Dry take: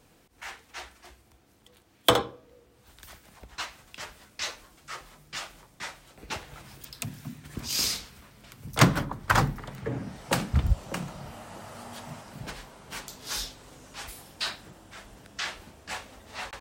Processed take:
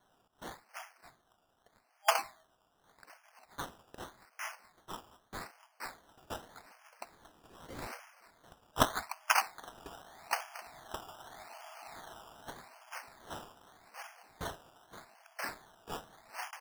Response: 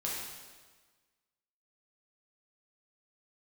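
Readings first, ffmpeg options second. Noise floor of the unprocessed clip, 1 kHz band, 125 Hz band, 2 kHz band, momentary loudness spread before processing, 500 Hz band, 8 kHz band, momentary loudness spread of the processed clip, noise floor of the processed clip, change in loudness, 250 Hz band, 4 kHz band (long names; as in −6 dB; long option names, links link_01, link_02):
−61 dBFS, −4.5 dB, −21.0 dB, −6.5 dB, 22 LU, −8.5 dB, −9.0 dB, 23 LU, −73 dBFS, −8.5 dB, −14.5 dB, −11.5 dB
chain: -af "afftfilt=real='re*between(b*sr/4096,620,3200)':imag='im*between(b*sr/4096,620,3200)':win_size=4096:overlap=0.75,acrusher=samples=16:mix=1:aa=0.000001:lfo=1:lforange=9.6:lforate=0.83,volume=-4dB"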